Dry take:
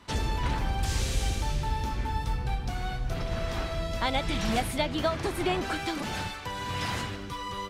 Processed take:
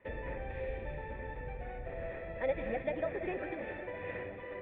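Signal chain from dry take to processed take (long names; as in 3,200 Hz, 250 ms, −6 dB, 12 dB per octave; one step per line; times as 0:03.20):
phase-vocoder stretch with locked phases 0.6×
formant resonators in series e
delay that swaps between a low-pass and a high-pass 182 ms, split 1,000 Hz, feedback 81%, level −9 dB
level +6.5 dB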